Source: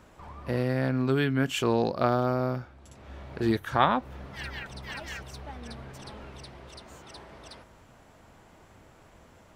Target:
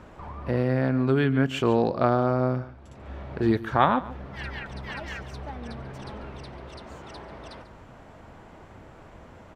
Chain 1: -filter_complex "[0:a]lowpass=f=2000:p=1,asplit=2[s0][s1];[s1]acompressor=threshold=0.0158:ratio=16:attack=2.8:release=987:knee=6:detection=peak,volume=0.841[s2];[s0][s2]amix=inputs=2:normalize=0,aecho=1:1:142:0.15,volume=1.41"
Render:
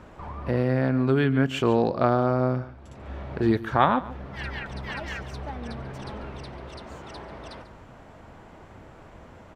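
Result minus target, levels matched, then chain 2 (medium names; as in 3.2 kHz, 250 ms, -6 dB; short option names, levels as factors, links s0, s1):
compression: peak gain reduction -8 dB
-filter_complex "[0:a]lowpass=f=2000:p=1,asplit=2[s0][s1];[s1]acompressor=threshold=0.00596:ratio=16:attack=2.8:release=987:knee=6:detection=peak,volume=0.841[s2];[s0][s2]amix=inputs=2:normalize=0,aecho=1:1:142:0.15,volume=1.41"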